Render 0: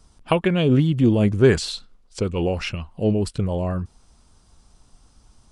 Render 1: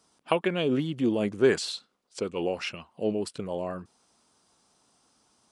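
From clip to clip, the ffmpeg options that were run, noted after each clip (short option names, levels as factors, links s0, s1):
-af "highpass=270,volume=0.596"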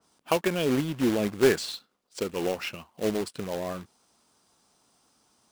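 -af "acrusher=bits=2:mode=log:mix=0:aa=0.000001,adynamicequalizer=threshold=0.00708:dfrequency=3200:dqfactor=0.7:tfrequency=3200:tqfactor=0.7:attack=5:release=100:ratio=0.375:range=2:mode=cutabove:tftype=highshelf"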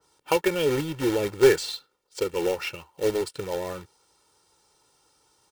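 -af "aecho=1:1:2.2:0.79"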